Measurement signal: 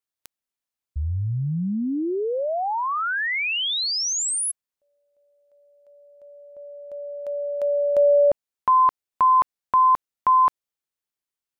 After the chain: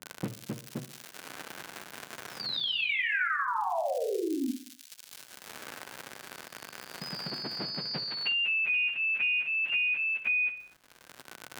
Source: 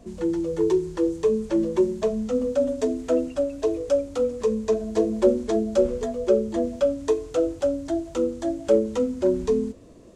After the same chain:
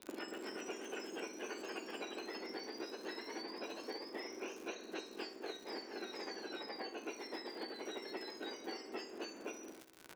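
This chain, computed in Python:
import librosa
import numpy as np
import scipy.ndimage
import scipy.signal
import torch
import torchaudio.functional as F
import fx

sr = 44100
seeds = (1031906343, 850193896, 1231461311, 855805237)

y = fx.octave_mirror(x, sr, pivot_hz=1600.0)
y = scipy.signal.sosfilt(scipy.signal.butter(4, 2600.0, 'lowpass', fs=sr, output='sos'), y)
y = fx.hum_notches(y, sr, base_hz=60, count=2)
y = fx.gate_hold(y, sr, open_db=-46.0, close_db=-54.0, hold_ms=71.0, range_db=-19, attack_ms=1.4, release_ms=30.0)
y = fx.rider(y, sr, range_db=4, speed_s=0.5)
y = fx.comb_fb(y, sr, f0_hz=110.0, decay_s=0.35, harmonics='all', damping=0.0, mix_pct=60)
y = fx.dmg_crackle(y, sr, seeds[0], per_s=79.0, level_db=-49.0)
y = fx.small_body(y, sr, hz=(1500.0,), ring_ms=45, db=8)
y = fx.echo_pitch(y, sr, ms=272, semitones=1, count=2, db_per_echo=-3.0)
y = fx.echo_feedback(y, sr, ms=62, feedback_pct=43, wet_db=-14.5)
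y = fx.band_squash(y, sr, depth_pct=100)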